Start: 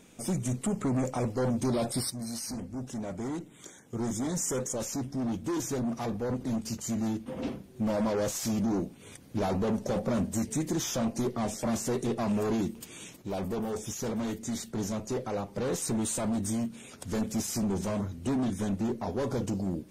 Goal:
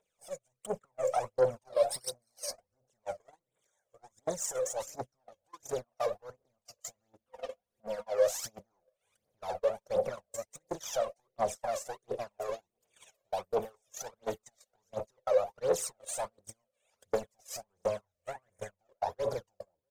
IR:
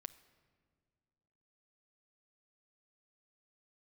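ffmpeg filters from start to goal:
-filter_complex "[0:a]asplit=3[a][b][c];[a]afade=t=out:st=7.32:d=0.02[d];[b]aecho=1:1:4.2:0.91,afade=t=in:st=7.32:d=0.02,afade=t=out:st=8.08:d=0.02[e];[c]afade=t=in:st=8.08:d=0.02[f];[d][e][f]amix=inputs=3:normalize=0,acompressor=threshold=-44dB:ratio=5,asettb=1/sr,asplit=3[g][h][i];[g]atrim=end=18.234[j];[h]atrim=start=18.23:end=18.71,asetpts=PTS-STARTPTS,afade=t=in:d=0.004:c=qsin,afade=t=out:st=0.476:d=0.004:c=qsin,equalizer=f=125:t=o:w=1:g=6,equalizer=f=250:t=o:w=1:g=-7,equalizer=f=500:t=o:w=1:g=5,equalizer=f=2k:t=o:w=1:g=12,equalizer=f=4k:t=o:w=1:g=-11,equalizer=f=8k:t=o:w=1:g=7[k];[i]atrim=start=18.706[l];[j][k]acrossfade=d=0.004:c1=hsin:c2=qsin[m];[m][l]acrossfade=d=0.004:c1=qsin:c2=hsin,asoftclip=type=hard:threshold=-40dB,aphaser=in_gain=1:out_gain=1:delay=1.9:decay=0.7:speed=1.4:type=triangular,lowshelf=f=380:t=q:w=3:g=-12,asplit=2[n][o];[o]adelay=666,lowpass=f=1.4k:p=1,volume=-16.5dB,asplit=2[p][q];[q]adelay=666,lowpass=f=1.4k:p=1,volume=0.37,asplit=2[r][s];[s]adelay=666,lowpass=f=1.4k:p=1,volume=0.37[t];[p][r][t]amix=inputs=3:normalize=0[u];[n][u]amix=inputs=2:normalize=0,agate=range=-36dB:threshold=-42dB:ratio=16:detection=peak,volume=8.5dB"

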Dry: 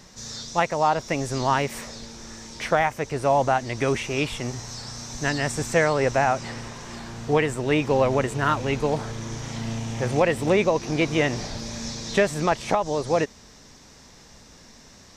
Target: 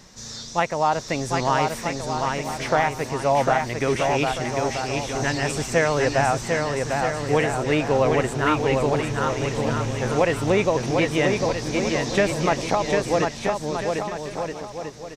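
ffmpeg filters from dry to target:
-af "aecho=1:1:750|1275|1642|1900|2080:0.631|0.398|0.251|0.158|0.1"

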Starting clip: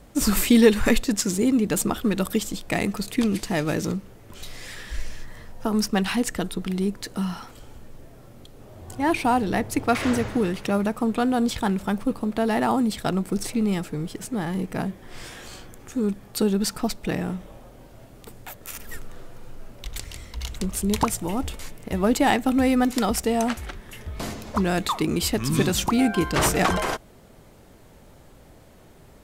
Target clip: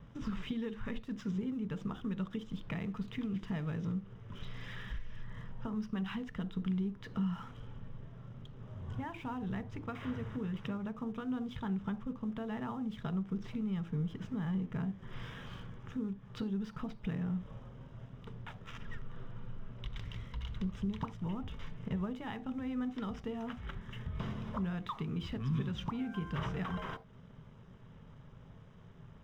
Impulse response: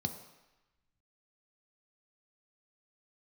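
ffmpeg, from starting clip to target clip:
-filter_complex "[0:a]lowpass=f=3.6k:w=0.5412,lowpass=f=3.6k:w=1.3066,acompressor=threshold=-32dB:ratio=6,aeval=exprs='sgn(val(0))*max(abs(val(0))-0.00119,0)':c=same,asplit=2[a][b];[1:a]atrim=start_sample=2205,atrim=end_sample=3969[c];[b][c]afir=irnorm=-1:irlink=0,volume=-8dB[d];[a][d]amix=inputs=2:normalize=0,volume=-4.5dB"

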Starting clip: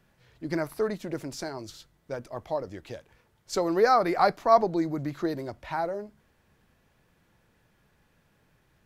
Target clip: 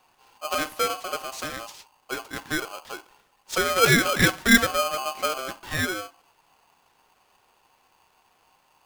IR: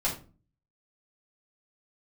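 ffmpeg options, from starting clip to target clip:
-filter_complex "[0:a]asplit=2[a][b];[1:a]atrim=start_sample=2205[c];[b][c]afir=irnorm=-1:irlink=0,volume=-21dB[d];[a][d]amix=inputs=2:normalize=0,aeval=exprs='val(0)*sgn(sin(2*PI*920*n/s))':c=same,volume=1.5dB"

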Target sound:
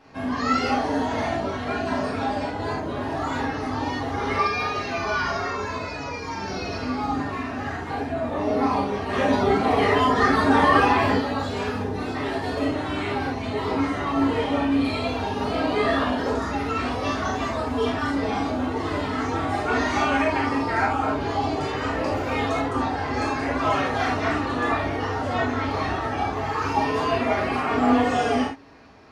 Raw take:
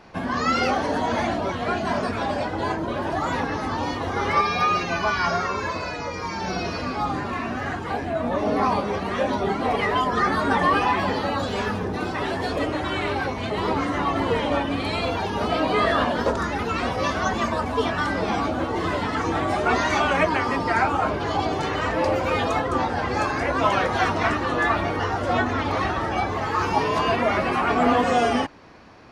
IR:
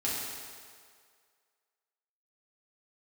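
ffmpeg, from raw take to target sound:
-filter_complex "[0:a]asettb=1/sr,asplit=3[a][b][c];[a]atrim=end=9.094[d];[b]atrim=start=9.09:end=11.13,asetpts=PTS-STARTPTS,afade=t=in:d=0.004:c=qsin,afade=t=out:st=2.036:d=0.004:c=qsin,acontrast=23[e];[c]atrim=start=11.126[f];[d][e]acrossfade=d=0.004:c1=hsin:c2=qsin[g];[g][f]acrossfade=d=0.004:c1=qsin:c2=hsin[h];[1:a]atrim=start_sample=2205,afade=t=out:st=0.14:d=0.01,atrim=end_sample=6615[i];[h][i]afir=irnorm=-1:irlink=0,volume=-6.5dB"

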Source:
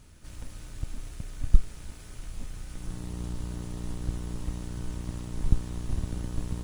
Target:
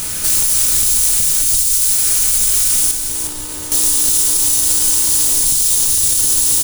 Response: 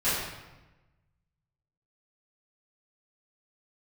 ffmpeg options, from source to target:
-filter_complex "[0:a]aemphasis=mode=production:type=riaa,bandreject=f=60:t=h:w=6,bandreject=f=120:t=h:w=6,bandreject=f=180:t=h:w=6,bandreject=f=240:t=h:w=6,asettb=1/sr,asplit=3[a][b][c];[a]atrim=end=2.914[d];[b]atrim=start=2.91:end=3.72,asetpts=PTS-STARTPTS,afade=t=in:d=0.004:c=qsin,afade=t=out:st=0.806:d=0.004:c=qsin,agate=range=-33dB:threshold=-28dB:ratio=3:detection=peak[e];[c]atrim=start=3.716[f];[d][e]acrossfade=d=0.004:c1=hsin:c2=qsin[g];[g][f]acrossfade=d=0.004:c1=qsin:c2=hsin,lowshelf=f=150:g=4.5,acrossover=split=3700[h][i];[h]acompressor=threshold=-57dB:ratio=6[j];[j][i]amix=inputs=2:normalize=0,aecho=1:1:359:0.316,asplit=2[k][l];[1:a]atrim=start_sample=2205,asetrate=40131,aresample=44100[m];[l][m]afir=irnorm=-1:irlink=0,volume=-17dB[n];[k][n]amix=inputs=2:normalize=0,alimiter=level_in=30dB:limit=-1dB:release=50:level=0:latency=1,volume=-2.5dB"

